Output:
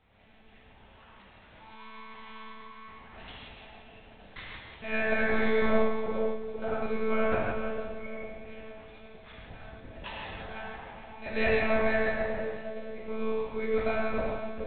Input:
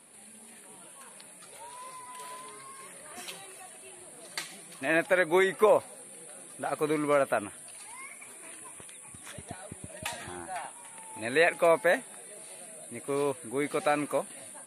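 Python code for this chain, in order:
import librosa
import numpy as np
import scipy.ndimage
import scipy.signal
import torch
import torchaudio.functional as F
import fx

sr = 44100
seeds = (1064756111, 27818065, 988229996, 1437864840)

y = fx.echo_split(x, sr, split_hz=730.0, low_ms=456, high_ms=170, feedback_pct=52, wet_db=-5.5)
y = fx.lpc_monotone(y, sr, seeds[0], pitch_hz=220.0, order=8)
y = fx.rev_gated(y, sr, seeds[1], gate_ms=190, shape='flat', drr_db=-3.5)
y = y * 10.0 ** (-6.0 / 20.0)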